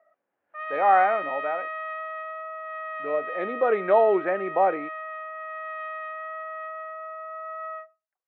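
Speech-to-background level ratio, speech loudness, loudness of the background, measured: 10.5 dB, −23.5 LKFS, −34.0 LKFS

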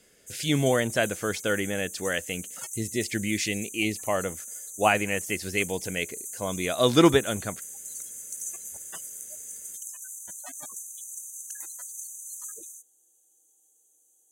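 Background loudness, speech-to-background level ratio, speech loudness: −36.5 LKFS, 9.5 dB, −27.0 LKFS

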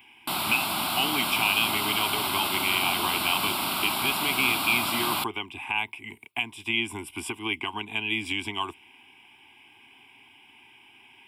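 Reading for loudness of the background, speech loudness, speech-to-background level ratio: −27.0 LKFS, −28.0 LKFS, −1.0 dB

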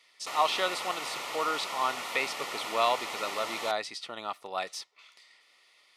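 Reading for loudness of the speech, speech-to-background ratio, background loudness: −32.5 LKFS, 3.5 dB, −36.0 LKFS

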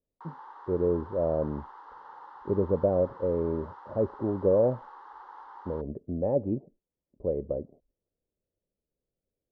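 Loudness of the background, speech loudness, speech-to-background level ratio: −47.5 LKFS, −29.5 LKFS, 18.0 dB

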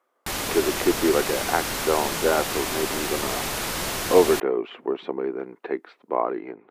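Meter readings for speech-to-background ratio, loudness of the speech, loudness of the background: 1.5 dB, −25.5 LKFS, −27.0 LKFS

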